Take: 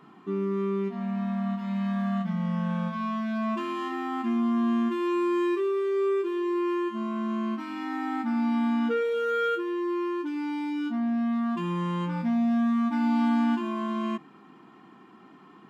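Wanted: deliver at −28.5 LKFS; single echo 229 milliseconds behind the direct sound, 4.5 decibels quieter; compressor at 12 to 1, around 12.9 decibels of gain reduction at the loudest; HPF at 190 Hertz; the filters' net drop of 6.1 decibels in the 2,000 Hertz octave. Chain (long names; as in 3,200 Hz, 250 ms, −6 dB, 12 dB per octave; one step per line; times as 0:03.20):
high-pass filter 190 Hz
parametric band 2,000 Hz −9 dB
downward compressor 12 to 1, threshold −36 dBFS
single-tap delay 229 ms −4.5 dB
level +9.5 dB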